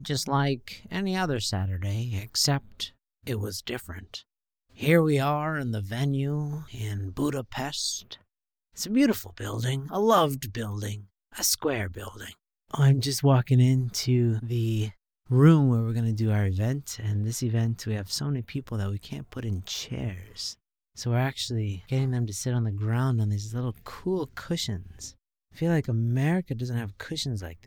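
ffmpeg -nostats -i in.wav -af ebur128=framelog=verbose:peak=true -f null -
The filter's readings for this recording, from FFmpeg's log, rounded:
Integrated loudness:
  I:         -27.3 LUFS
  Threshold: -37.7 LUFS
Loudness range:
  LRA:         6.7 LU
  Threshold: -47.6 LUFS
  LRA low:   -31.0 LUFS
  LRA high:  -24.3 LUFS
True peak:
  Peak:       -6.0 dBFS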